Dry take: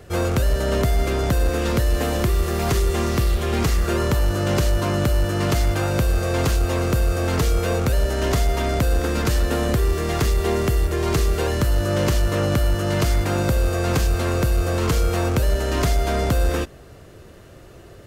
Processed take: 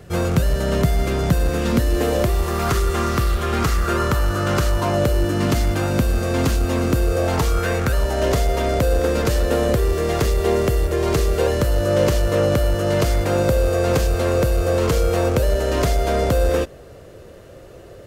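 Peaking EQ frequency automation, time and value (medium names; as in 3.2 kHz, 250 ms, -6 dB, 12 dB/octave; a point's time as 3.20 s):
peaking EQ +9 dB 0.57 oct
1.58 s 160 Hz
2.64 s 1.3 kHz
4.67 s 1.3 kHz
5.38 s 240 Hz
6.87 s 240 Hz
7.76 s 2.1 kHz
8.28 s 520 Hz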